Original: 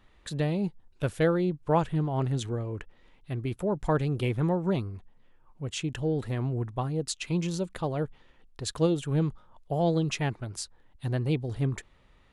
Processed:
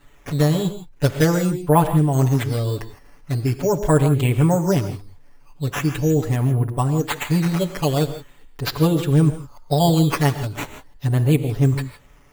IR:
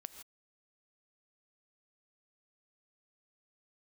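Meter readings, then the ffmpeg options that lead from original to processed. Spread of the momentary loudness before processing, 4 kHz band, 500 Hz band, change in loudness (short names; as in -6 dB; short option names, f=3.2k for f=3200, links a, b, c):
11 LU, +8.5 dB, +8.0 dB, +10.0 dB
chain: -filter_complex "[0:a]acrusher=samples=8:mix=1:aa=0.000001:lfo=1:lforange=8:lforate=0.42,asplit=2[a][b];[1:a]atrim=start_sample=2205,adelay=7[c];[b][c]afir=irnorm=-1:irlink=0,volume=8.5dB[d];[a][d]amix=inputs=2:normalize=0,volume=4dB"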